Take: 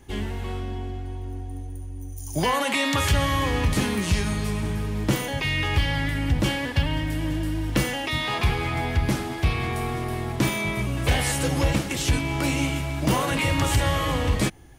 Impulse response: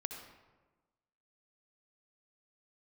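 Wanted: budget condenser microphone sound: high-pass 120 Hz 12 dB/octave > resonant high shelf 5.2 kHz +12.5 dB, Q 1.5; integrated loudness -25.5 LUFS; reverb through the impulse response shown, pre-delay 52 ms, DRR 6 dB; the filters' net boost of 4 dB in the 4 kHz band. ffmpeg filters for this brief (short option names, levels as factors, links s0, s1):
-filter_complex "[0:a]equalizer=f=4000:t=o:g=6.5,asplit=2[s0][s1];[1:a]atrim=start_sample=2205,adelay=52[s2];[s1][s2]afir=irnorm=-1:irlink=0,volume=0.531[s3];[s0][s3]amix=inputs=2:normalize=0,highpass=120,highshelf=f=5200:t=q:w=1.5:g=12.5,volume=0.531"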